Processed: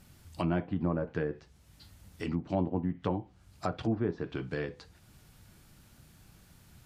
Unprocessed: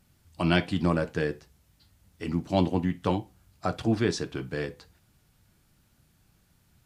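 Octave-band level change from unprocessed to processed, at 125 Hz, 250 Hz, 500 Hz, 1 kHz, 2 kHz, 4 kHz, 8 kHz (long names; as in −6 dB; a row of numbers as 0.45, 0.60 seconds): −5.0 dB, −5.0 dB, −5.0 dB, −6.0 dB, −9.5 dB, −13.0 dB, below −10 dB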